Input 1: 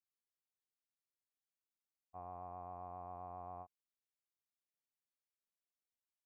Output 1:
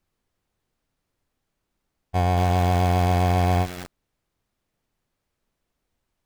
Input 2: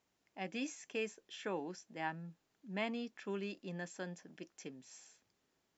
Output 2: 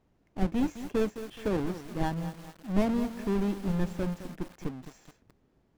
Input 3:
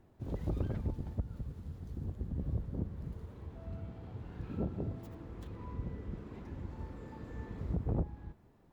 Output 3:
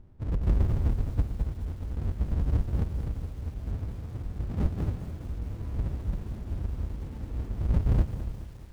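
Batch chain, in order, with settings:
half-waves squared off; tilt -3.5 dB/oct; lo-fi delay 0.212 s, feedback 55%, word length 7-bit, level -11.5 dB; normalise peaks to -12 dBFS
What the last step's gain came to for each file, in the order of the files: +20.5, +2.0, -6.5 dB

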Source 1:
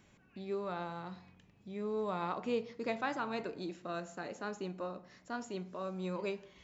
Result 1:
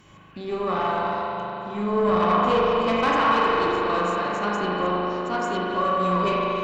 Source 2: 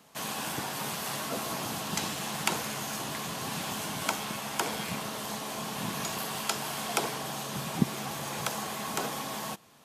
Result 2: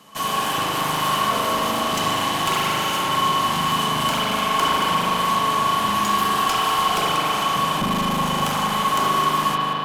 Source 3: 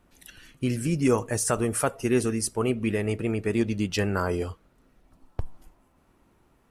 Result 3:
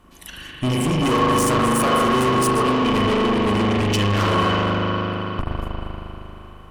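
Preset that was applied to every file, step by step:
reverse delay 0.157 s, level -11.5 dB; spring tank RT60 3.7 s, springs 39 ms, chirp 40 ms, DRR -5 dB; tube stage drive 28 dB, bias 0.5; small resonant body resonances 1100/3000 Hz, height 16 dB, ringing for 70 ms; normalise peaks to -9 dBFS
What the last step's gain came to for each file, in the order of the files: +12.0, +8.5, +10.5 dB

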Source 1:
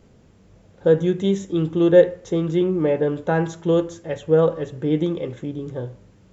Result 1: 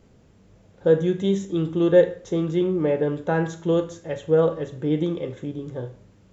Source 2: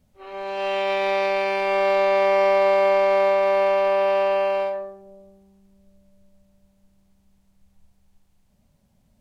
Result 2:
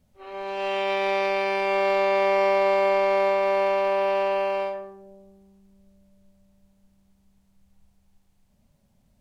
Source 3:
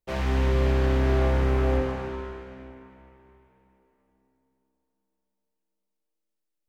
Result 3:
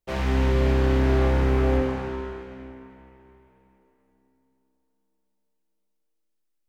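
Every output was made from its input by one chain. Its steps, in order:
Schroeder reverb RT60 0.39 s, combs from 27 ms, DRR 11.5 dB; match loudness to -23 LUFS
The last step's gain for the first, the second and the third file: -2.5, -1.5, +1.5 dB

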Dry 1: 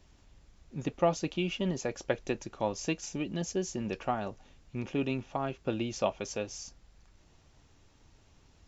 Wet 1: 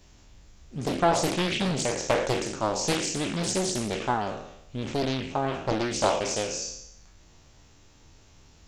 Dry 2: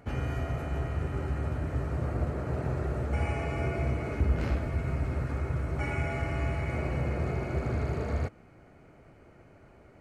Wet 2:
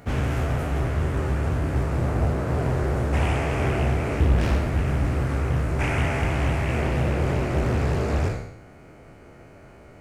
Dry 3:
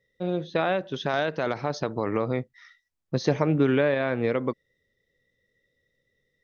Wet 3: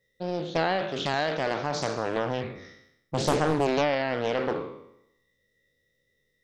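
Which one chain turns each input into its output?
spectral trails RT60 0.81 s; high shelf 5100 Hz +8 dB; Doppler distortion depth 0.92 ms; normalise peaks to -9 dBFS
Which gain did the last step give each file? +3.5, +5.5, -2.5 dB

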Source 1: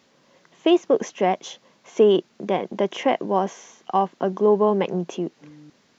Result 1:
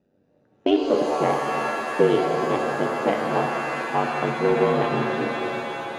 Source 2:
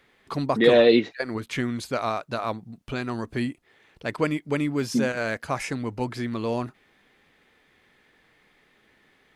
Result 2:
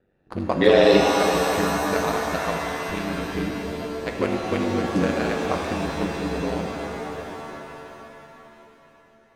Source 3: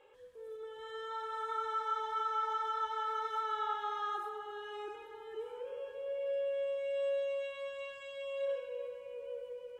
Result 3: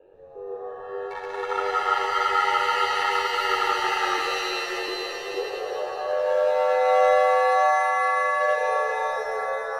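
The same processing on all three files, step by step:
Wiener smoothing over 41 samples; ring modulator 47 Hz; shimmer reverb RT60 3.2 s, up +7 st, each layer -2 dB, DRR 2 dB; match loudness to -23 LUFS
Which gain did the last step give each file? 0.0, +3.5, +16.0 dB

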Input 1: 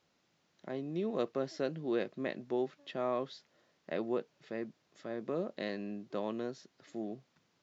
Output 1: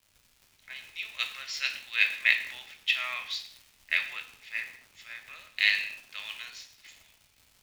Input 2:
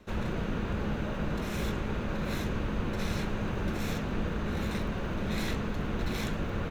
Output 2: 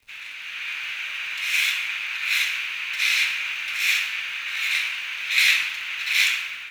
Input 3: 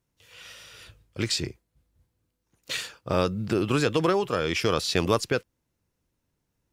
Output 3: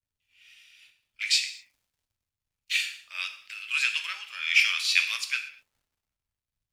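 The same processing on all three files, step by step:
ladder high-pass 2100 Hz, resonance 60%; AGC gain up to 5 dB; crackle 290/s -55 dBFS; non-linear reverb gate 0.27 s falling, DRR 4.5 dB; three-band expander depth 70%; normalise peaks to -6 dBFS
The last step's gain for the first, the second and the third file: +18.5, +19.0, +3.0 dB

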